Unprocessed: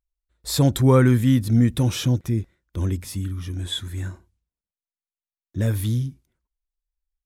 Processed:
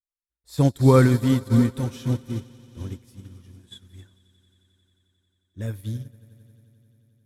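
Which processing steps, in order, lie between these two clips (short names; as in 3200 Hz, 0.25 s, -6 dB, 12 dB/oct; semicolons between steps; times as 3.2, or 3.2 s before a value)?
swelling echo 89 ms, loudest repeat 5, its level -16 dB; upward expander 2.5:1, over -31 dBFS; gain +2 dB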